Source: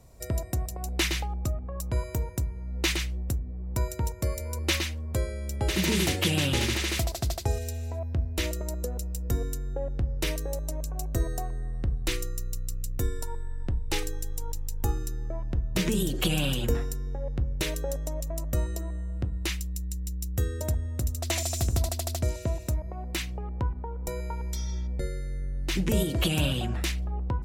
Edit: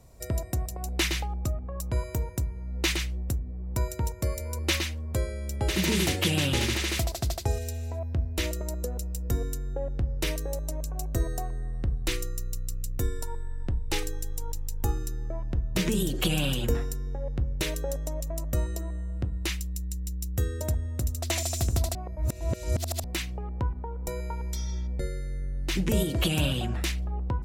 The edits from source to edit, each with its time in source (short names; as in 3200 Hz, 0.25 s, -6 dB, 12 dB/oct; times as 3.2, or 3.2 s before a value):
21.95–23.04 reverse